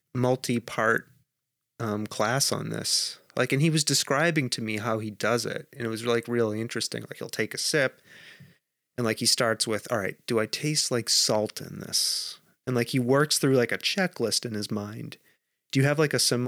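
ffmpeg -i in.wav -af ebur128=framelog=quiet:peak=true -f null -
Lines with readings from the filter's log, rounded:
Integrated loudness:
  I:         -25.9 LUFS
  Threshold: -36.5 LUFS
Loudness range:
  LRA:         3.8 LU
  Threshold: -46.4 LUFS
  LRA low:   -28.8 LUFS
  LRA high:  -25.0 LUFS
True peak:
  Peak:      -10.0 dBFS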